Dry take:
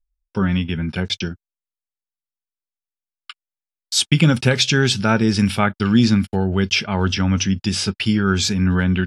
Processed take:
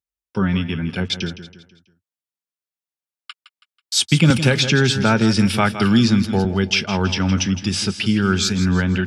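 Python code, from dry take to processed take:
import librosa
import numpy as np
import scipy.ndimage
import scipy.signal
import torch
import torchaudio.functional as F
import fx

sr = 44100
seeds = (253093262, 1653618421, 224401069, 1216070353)

y = scipy.signal.sosfilt(scipy.signal.butter(4, 84.0, 'highpass', fs=sr, output='sos'), x)
y = fx.echo_feedback(y, sr, ms=163, feedback_pct=42, wet_db=-12.5)
y = fx.band_squash(y, sr, depth_pct=70, at=(4.3, 6.45))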